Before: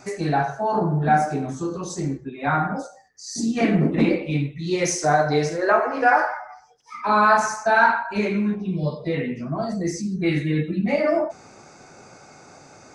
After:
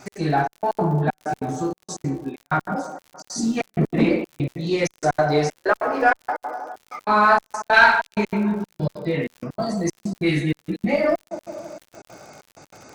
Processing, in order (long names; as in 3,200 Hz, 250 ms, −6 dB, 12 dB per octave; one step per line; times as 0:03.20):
0:09.38–0:10.87: high-shelf EQ 5,300 Hz +11.5 dB
on a send: delay with a band-pass on its return 160 ms, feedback 65%, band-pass 550 Hz, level −11 dB
on the sum: gate pattern "x.xxxx.." 191 BPM −60 dB
surface crackle 81 per second −37 dBFS
0:07.73–0:08.14: meter weighting curve D
in parallel at −10 dB: asymmetric clip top −22.5 dBFS
on the sum: level −1 dB